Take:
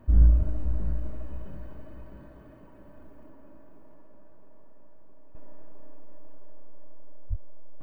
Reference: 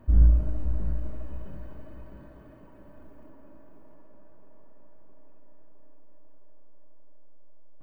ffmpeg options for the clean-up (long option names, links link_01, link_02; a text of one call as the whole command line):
ffmpeg -i in.wav -filter_complex "[0:a]asplit=3[link_01][link_02][link_03];[link_01]afade=type=out:start_time=0.38:duration=0.02[link_04];[link_02]highpass=frequency=140:width=0.5412,highpass=frequency=140:width=1.3066,afade=type=in:start_time=0.38:duration=0.02,afade=type=out:start_time=0.5:duration=0.02[link_05];[link_03]afade=type=in:start_time=0.5:duration=0.02[link_06];[link_04][link_05][link_06]amix=inputs=3:normalize=0,asplit=3[link_07][link_08][link_09];[link_07]afade=type=out:start_time=7.29:duration=0.02[link_10];[link_08]highpass=frequency=140:width=0.5412,highpass=frequency=140:width=1.3066,afade=type=in:start_time=7.29:duration=0.02,afade=type=out:start_time=7.41:duration=0.02[link_11];[link_09]afade=type=in:start_time=7.41:duration=0.02[link_12];[link_10][link_11][link_12]amix=inputs=3:normalize=0,asetnsamples=nb_out_samples=441:pad=0,asendcmd='5.35 volume volume -9dB',volume=0dB" out.wav